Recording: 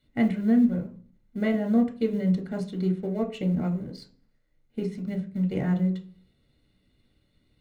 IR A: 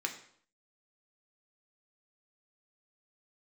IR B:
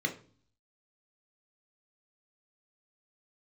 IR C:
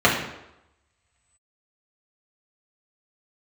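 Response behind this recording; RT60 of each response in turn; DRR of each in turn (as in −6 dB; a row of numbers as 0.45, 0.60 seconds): B; 0.60, 0.45, 0.90 seconds; 2.5, 3.5, −6.0 decibels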